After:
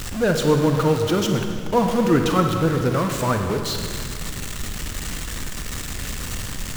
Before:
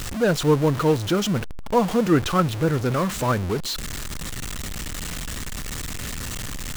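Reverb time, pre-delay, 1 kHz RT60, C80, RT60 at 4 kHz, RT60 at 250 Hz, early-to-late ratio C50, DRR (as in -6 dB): 2.2 s, 33 ms, 2.1 s, 6.0 dB, 1.9 s, 2.6 s, 4.5 dB, 4.0 dB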